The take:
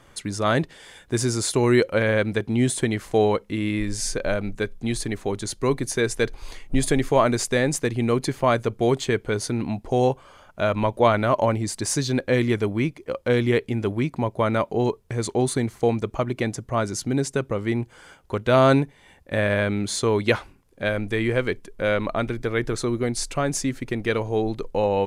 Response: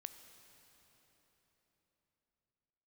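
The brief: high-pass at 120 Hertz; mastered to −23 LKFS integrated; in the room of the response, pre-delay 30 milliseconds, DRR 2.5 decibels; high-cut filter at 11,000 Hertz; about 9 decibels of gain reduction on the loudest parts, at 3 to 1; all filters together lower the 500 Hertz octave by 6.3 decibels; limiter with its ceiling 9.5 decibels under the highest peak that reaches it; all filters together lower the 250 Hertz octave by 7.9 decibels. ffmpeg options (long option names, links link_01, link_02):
-filter_complex "[0:a]highpass=120,lowpass=11000,equalizer=frequency=250:width_type=o:gain=-8,equalizer=frequency=500:width_type=o:gain=-5.5,acompressor=threshold=-28dB:ratio=3,alimiter=limit=-22.5dB:level=0:latency=1,asplit=2[link_01][link_02];[1:a]atrim=start_sample=2205,adelay=30[link_03];[link_02][link_03]afir=irnorm=-1:irlink=0,volume=2.5dB[link_04];[link_01][link_04]amix=inputs=2:normalize=0,volume=9.5dB"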